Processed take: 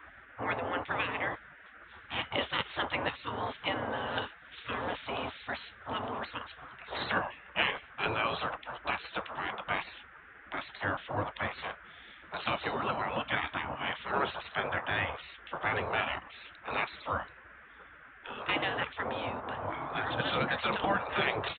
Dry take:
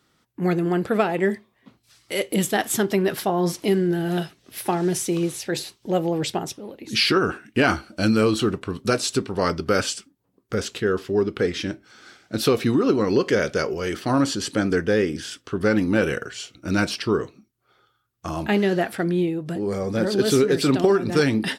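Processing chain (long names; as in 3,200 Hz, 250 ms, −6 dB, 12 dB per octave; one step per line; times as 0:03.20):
noise in a band 79–1,100 Hz −36 dBFS
downsampling to 8,000 Hz
gate on every frequency bin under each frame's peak −15 dB weak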